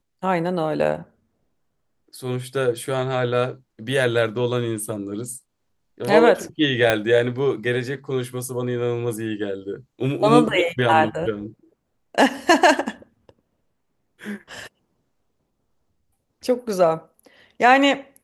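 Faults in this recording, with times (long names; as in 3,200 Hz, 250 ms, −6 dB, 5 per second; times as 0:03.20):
0:06.90: click −4 dBFS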